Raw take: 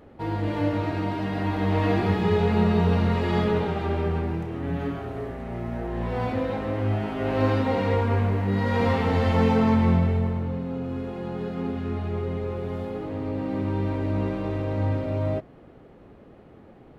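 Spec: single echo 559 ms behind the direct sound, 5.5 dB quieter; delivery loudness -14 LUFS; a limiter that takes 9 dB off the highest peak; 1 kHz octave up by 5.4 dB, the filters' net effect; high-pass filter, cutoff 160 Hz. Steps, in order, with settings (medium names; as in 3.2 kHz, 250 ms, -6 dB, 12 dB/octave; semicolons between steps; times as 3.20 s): high-pass 160 Hz; peaking EQ 1 kHz +6.5 dB; peak limiter -18 dBFS; delay 559 ms -5.5 dB; trim +13.5 dB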